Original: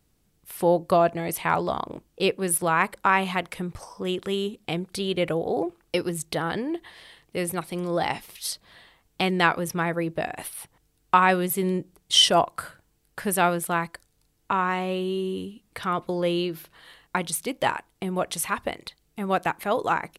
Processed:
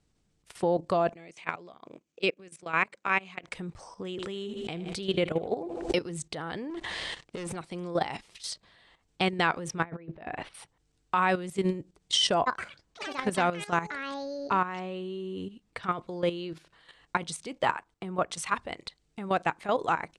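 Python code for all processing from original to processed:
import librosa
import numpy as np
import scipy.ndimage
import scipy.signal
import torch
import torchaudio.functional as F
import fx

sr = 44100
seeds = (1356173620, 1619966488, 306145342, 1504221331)

y = fx.chain(x, sr, fx.level_steps(step_db=23),
    fx.cabinet(low_hz=170.0, low_slope=12, high_hz=9000.0, hz=(890.0, 2400.0, 6500.0), db=(-6, 7, 6)), at=(1.13, 3.47))
y = fx.chain(y, sr, fx.echo_feedback(ms=78, feedback_pct=41, wet_db=-16.5),
    fx.pre_swell(db_per_s=57.0), at=(4.11, 6.0))
y = fx.chain(y, sr, fx.leveller(passes=3),
    fx.over_compress(threshold_db=-27.0, ratio=-0.5), at=(6.7, 7.56))
y = fx.chain(y, sr, fx.lowpass(hz=2800.0, slope=12),
    fx.over_compress(threshold_db=-33.0, ratio=-0.5), at=(9.84, 10.54))
y = fx.chain(y, sr, fx.high_shelf(hz=4300.0, db=-4.5),
    fx.echo_pitch(ms=121, semitones=7, count=3, db_per_echo=-6.0), at=(12.34, 15.84))
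y = fx.chain(y, sr, fx.peak_eq(hz=1200.0, db=5.0, octaves=0.69),
    fx.band_widen(depth_pct=40), at=(17.62, 18.54))
y = scipy.signal.sosfilt(scipy.signal.butter(6, 8600.0, 'lowpass', fs=sr, output='sos'), y)
y = fx.level_steps(y, sr, step_db=12)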